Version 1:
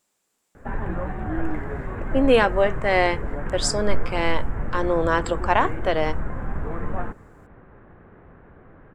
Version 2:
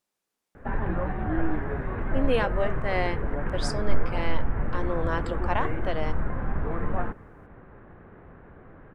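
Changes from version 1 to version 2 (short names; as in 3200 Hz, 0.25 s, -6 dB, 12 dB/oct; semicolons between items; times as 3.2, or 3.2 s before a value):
speech -8.5 dB; master: add bell 7500 Hz -10 dB 0.27 oct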